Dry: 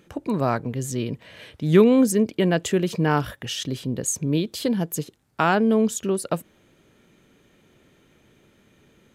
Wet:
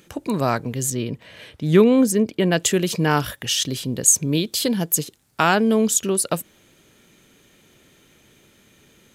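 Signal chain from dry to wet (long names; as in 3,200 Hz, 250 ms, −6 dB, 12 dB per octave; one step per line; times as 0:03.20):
high-shelf EQ 2,900 Hz +11 dB, from 0:00.90 +2 dB, from 0:02.52 +11.5 dB
level +1 dB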